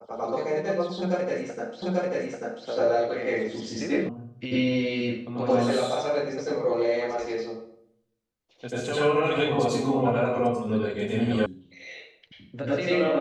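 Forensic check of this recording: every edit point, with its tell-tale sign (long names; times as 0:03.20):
0:01.82: the same again, the last 0.84 s
0:04.09: cut off before it has died away
0:11.46: cut off before it has died away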